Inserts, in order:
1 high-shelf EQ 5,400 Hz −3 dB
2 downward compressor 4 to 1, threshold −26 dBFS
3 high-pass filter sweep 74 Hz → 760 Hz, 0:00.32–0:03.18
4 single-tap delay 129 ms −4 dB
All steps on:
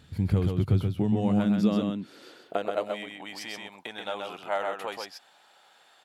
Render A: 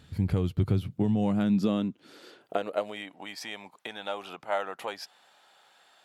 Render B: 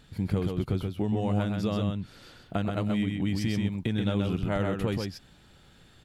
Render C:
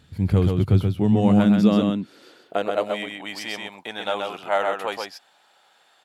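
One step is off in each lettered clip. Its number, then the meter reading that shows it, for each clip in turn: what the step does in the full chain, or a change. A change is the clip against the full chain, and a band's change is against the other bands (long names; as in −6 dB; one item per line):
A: 4, change in integrated loudness −1.5 LU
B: 3, change in momentary loudness spread −9 LU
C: 2, average gain reduction 5.0 dB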